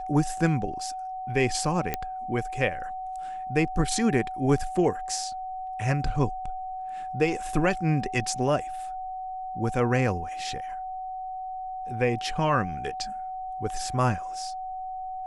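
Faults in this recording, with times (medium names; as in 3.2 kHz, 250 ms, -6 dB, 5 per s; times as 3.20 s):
whine 750 Hz -32 dBFS
1.94 s: pop -11 dBFS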